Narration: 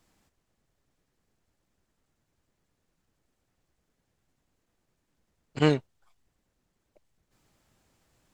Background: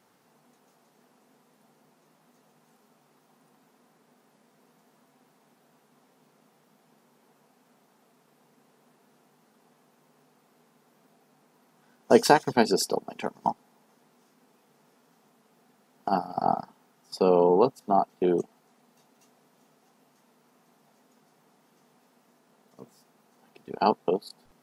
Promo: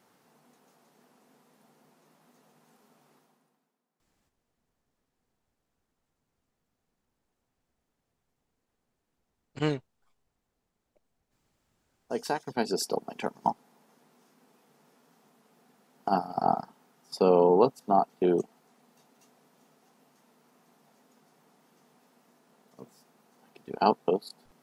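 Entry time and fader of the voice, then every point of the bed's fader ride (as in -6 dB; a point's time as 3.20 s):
4.00 s, -6.0 dB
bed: 3.15 s -0.5 dB
3.82 s -22.5 dB
11.65 s -22.5 dB
13.05 s -0.5 dB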